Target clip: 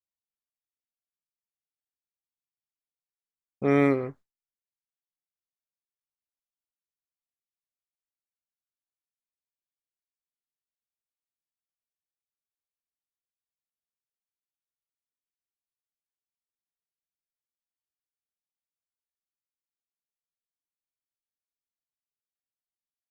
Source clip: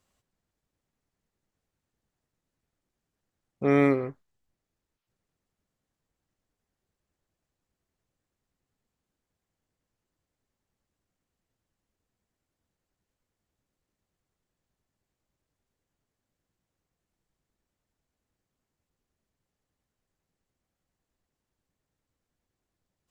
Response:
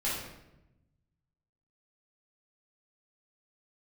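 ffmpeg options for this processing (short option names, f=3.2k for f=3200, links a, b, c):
-af "agate=range=-33dB:threshold=-45dB:ratio=3:detection=peak"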